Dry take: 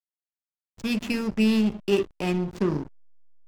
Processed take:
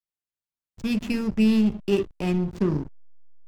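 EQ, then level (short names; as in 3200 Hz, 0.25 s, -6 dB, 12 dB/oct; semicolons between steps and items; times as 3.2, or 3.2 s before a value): low shelf 230 Hz +9.5 dB; -3.0 dB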